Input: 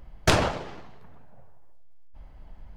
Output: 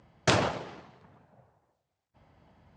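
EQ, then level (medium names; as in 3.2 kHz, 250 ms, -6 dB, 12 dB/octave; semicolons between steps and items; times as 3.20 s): high-pass 90 Hz 24 dB/octave; steep low-pass 8.3 kHz 48 dB/octave; -3.0 dB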